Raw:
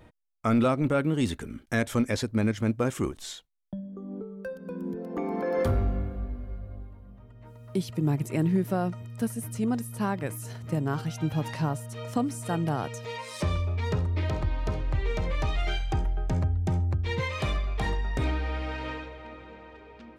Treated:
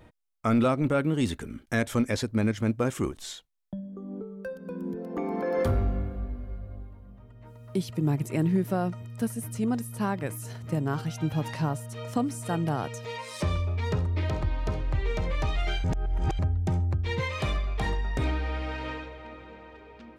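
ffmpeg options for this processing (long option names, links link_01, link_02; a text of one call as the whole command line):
ffmpeg -i in.wav -filter_complex "[0:a]asplit=3[link_01][link_02][link_03];[link_01]atrim=end=15.842[link_04];[link_02]atrim=start=15.838:end=16.392,asetpts=PTS-STARTPTS,areverse[link_05];[link_03]atrim=start=16.388[link_06];[link_04][link_05]acrossfade=duration=0.004:curve1=hsin:curve2=hsin[link_07];[link_07][link_06]acrossfade=duration=0.004:curve1=hsin:curve2=hsin" out.wav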